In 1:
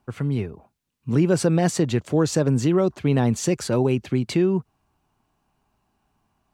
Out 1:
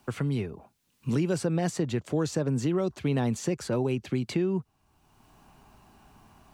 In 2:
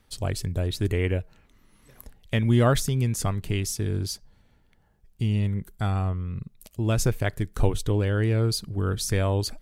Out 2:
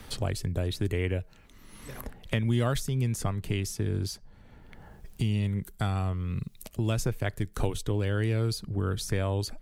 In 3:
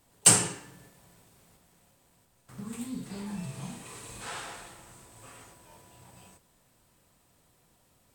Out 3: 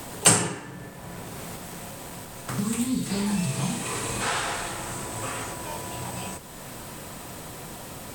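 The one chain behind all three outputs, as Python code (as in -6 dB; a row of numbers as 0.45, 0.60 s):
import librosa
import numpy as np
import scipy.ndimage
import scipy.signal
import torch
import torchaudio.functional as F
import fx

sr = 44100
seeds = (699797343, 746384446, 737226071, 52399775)

y = fx.band_squash(x, sr, depth_pct=70)
y = y * 10.0 ** (-30 / 20.0) / np.sqrt(np.mean(np.square(y)))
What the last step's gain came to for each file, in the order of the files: -7.5, -4.0, +12.5 dB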